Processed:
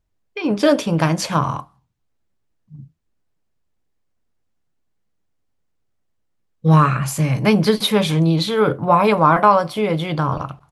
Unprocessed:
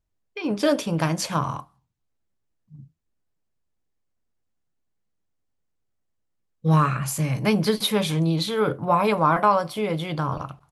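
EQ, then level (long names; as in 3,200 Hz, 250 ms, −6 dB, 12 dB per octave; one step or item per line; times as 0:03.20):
high-shelf EQ 6,600 Hz −6.5 dB
+6.0 dB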